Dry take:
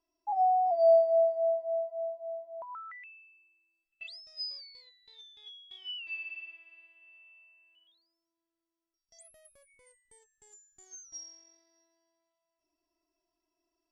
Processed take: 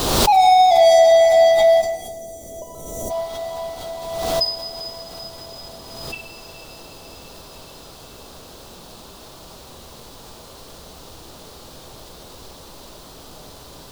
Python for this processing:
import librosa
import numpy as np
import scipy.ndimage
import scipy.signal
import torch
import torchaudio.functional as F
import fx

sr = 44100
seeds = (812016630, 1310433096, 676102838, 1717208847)

p1 = fx.wiener(x, sr, points=25)
p2 = fx.leveller(p1, sr, passes=5)
p3 = fx.env_lowpass(p2, sr, base_hz=570.0, full_db=-22.0)
p4 = fx.dmg_noise_colour(p3, sr, seeds[0], colour='pink', level_db=-45.0)
p5 = fx.graphic_eq_10(p4, sr, hz=(500, 1000, 2000, 4000), db=(6, 5, -10, 8))
p6 = p5 + fx.echo_diffused(p5, sr, ms=452, feedback_pct=69, wet_db=-11.0, dry=0)
p7 = fx.spec_box(p6, sr, start_s=1.82, length_s=1.28, low_hz=640.0, high_hz=5600.0, gain_db=-21)
p8 = fx.rev_gated(p7, sr, seeds[1], gate_ms=430, shape='falling', drr_db=3.5)
y = fx.pre_swell(p8, sr, db_per_s=35.0)